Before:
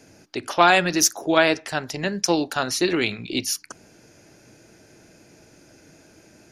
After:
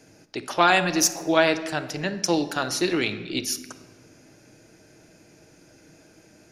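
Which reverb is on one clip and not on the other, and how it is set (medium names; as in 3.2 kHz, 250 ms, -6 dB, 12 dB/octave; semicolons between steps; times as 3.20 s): simulated room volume 1700 m³, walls mixed, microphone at 0.55 m; trim -2.5 dB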